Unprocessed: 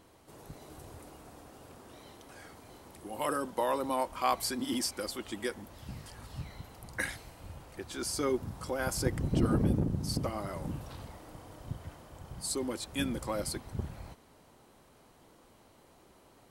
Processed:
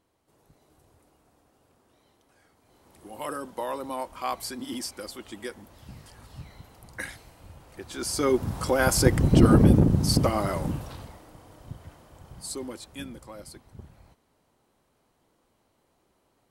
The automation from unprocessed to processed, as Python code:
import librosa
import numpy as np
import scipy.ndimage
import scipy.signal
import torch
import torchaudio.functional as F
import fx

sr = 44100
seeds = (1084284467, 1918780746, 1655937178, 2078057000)

y = fx.gain(x, sr, db=fx.line((2.57, -12.5), (3.06, -1.5), (7.6, -1.5), (8.57, 11.0), (10.5, 11.0), (11.3, -1.0), (12.61, -1.0), (13.29, -9.0)))